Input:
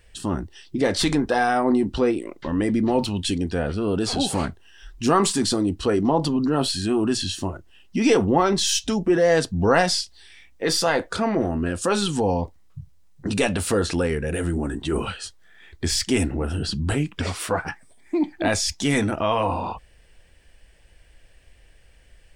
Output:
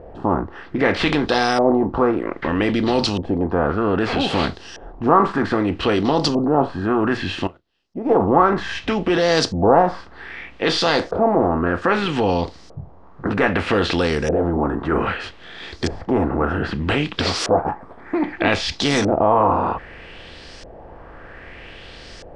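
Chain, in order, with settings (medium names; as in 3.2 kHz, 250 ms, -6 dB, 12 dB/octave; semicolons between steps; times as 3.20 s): spectral levelling over time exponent 0.6; LFO low-pass saw up 0.63 Hz 610–5800 Hz; 7.47–8.20 s: upward expansion 2.5:1, over -32 dBFS; trim -2 dB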